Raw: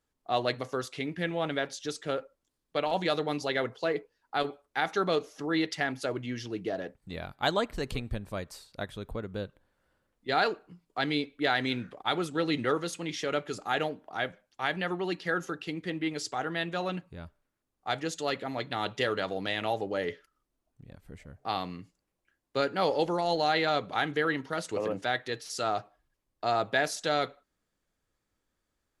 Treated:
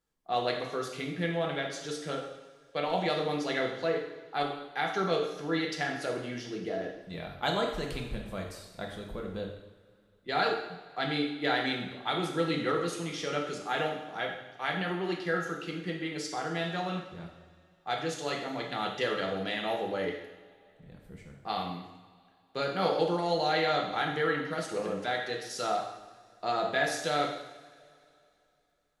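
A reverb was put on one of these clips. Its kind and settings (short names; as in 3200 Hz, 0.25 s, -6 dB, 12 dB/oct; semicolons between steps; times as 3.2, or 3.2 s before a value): two-slope reverb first 0.87 s, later 2.9 s, from -18 dB, DRR 0 dB; gain -4 dB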